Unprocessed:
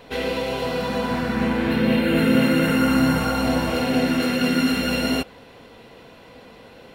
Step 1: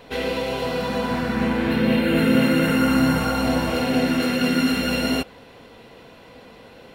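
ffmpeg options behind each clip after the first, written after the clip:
-af anull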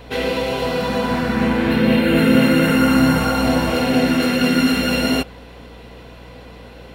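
-af "aeval=exprs='val(0)+0.00562*(sin(2*PI*60*n/s)+sin(2*PI*2*60*n/s)/2+sin(2*PI*3*60*n/s)/3+sin(2*PI*4*60*n/s)/4+sin(2*PI*5*60*n/s)/5)':c=same,volume=4dB"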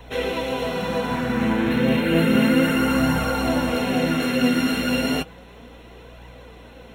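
-filter_complex "[0:a]acrossover=split=160[a][b];[a]acrusher=bits=3:mode=log:mix=0:aa=0.000001[c];[c][b]amix=inputs=2:normalize=0,flanger=delay=1:depth=8.3:regen=57:speed=0.32:shape=triangular,asuperstop=centerf=4700:order=4:qfactor=4.8"

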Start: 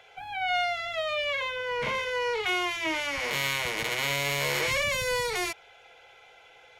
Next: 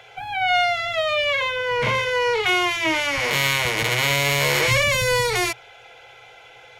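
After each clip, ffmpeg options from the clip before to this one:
-af "equalizer=f=120:w=7.7:g=14,volume=8dB"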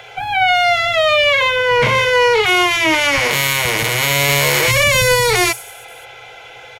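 -filter_complex "[0:a]acrossover=split=7500[a][b];[a]alimiter=limit=-14dB:level=0:latency=1[c];[b]aecho=1:1:40|100|190|325|527.5:0.631|0.398|0.251|0.158|0.1[d];[c][d]amix=inputs=2:normalize=0,volume=9dB"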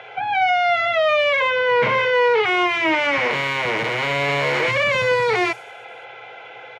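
-af "asoftclip=type=tanh:threshold=-11.5dB,highpass=190,lowpass=2.4k"

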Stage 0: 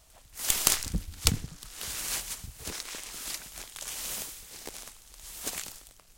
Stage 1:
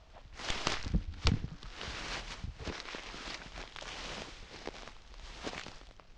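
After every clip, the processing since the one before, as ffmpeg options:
-filter_complex "[0:a]lowpass=f=5.6k:w=0.5412,lowpass=f=5.6k:w=1.3066,aemphasis=mode=reproduction:type=75fm,asplit=2[a][b];[b]acompressor=threshold=-44dB:ratio=6,volume=0dB[c];[a][c]amix=inputs=2:normalize=0,volume=-2.5dB"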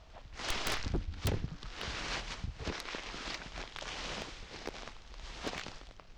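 -af "aeval=exprs='0.0447*(abs(mod(val(0)/0.0447+3,4)-2)-1)':c=same,volume=2dB"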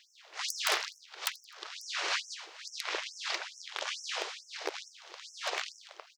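-af "aecho=1:1:85|170|255:0.075|0.0382|0.0195,afftfilt=real='re*gte(b*sr/1024,310*pow(5400/310,0.5+0.5*sin(2*PI*2.3*pts/sr)))':imag='im*gte(b*sr/1024,310*pow(5400/310,0.5+0.5*sin(2*PI*2.3*pts/sr)))':win_size=1024:overlap=0.75,volume=7dB"

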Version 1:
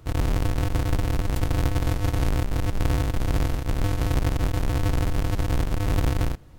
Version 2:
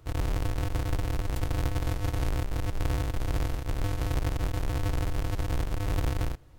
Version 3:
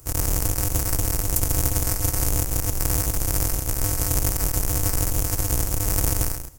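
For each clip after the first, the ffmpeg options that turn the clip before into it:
-af "equalizer=f=200:t=o:w=0.43:g=-11,volume=-5dB"
-filter_complex "[0:a]aexciter=amount=7.8:drive=6.6:freq=5.4k,asplit=2[a][b];[b]aecho=0:1:135:0.355[c];[a][c]amix=inputs=2:normalize=0,volume=3.5dB"

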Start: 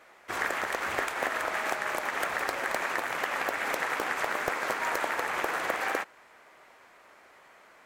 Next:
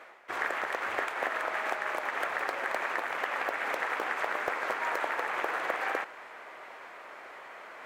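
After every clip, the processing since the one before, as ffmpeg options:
-af "bass=f=250:g=-11,treble=f=4k:g=-10,areverse,acompressor=mode=upward:threshold=-34dB:ratio=2.5,areverse,volume=-1dB"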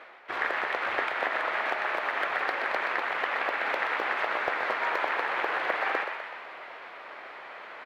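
-filter_complex "[0:a]highshelf=f=5.5k:t=q:w=1.5:g=-10.5,asplit=2[a][b];[b]asplit=7[c][d][e][f][g][h][i];[c]adelay=125,afreqshift=65,volume=-7dB[j];[d]adelay=250,afreqshift=130,volume=-11.7dB[k];[e]adelay=375,afreqshift=195,volume=-16.5dB[l];[f]adelay=500,afreqshift=260,volume=-21.2dB[m];[g]adelay=625,afreqshift=325,volume=-25.9dB[n];[h]adelay=750,afreqshift=390,volume=-30.7dB[o];[i]adelay=875,afreqshift=455,volume=-35.4dB[p];[j][k][l][m][n][o][p]amix=inputs=7:normalize=0[q];[a][q]amix=inputs=2:normalize=0,volume=1.5dB"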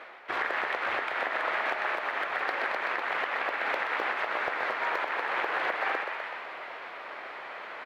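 -af "alimiter=limit=-21dB:level=0:latency=1:release=313,volume=2.5dB"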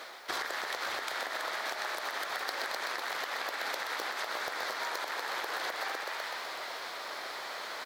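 -af "acompressor=threshold=-33dB:ratio=6,aexciter=amount=10.6:drive=4.9:freq=3.9k"

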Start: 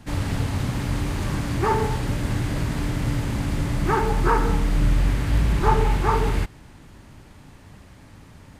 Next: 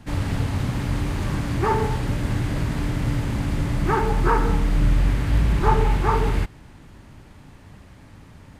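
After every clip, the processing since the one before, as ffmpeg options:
-af "bass=f=250:g=1,treble=f=4k:g=-3"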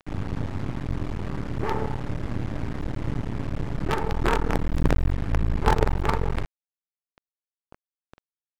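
-af "acrusher=bits=3:dc=4:mix=0:aa=0.000001,adynamicsmooth=sensitivity=5:basefreq=5.4k,highshelf=f=2.6k:g=-11.5,volume=-1.5dB"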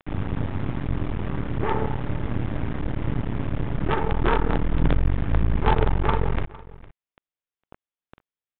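-af "asoftclip=type=hard:threshold=-12dB,aecho=1:1:457:0.1,aresample=8000,aresample=44100,volume=2.5dB"

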